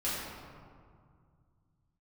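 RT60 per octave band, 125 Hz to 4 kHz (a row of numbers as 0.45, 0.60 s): 3.6, 2.8, 2.1, 2.1, 1.5, 1.0 s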